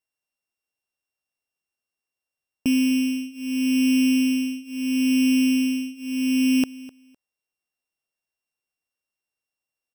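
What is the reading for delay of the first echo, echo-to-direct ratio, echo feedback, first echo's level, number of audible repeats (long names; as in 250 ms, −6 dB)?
254 ms, −20.0 dB, 19%, −20.0 dB, 2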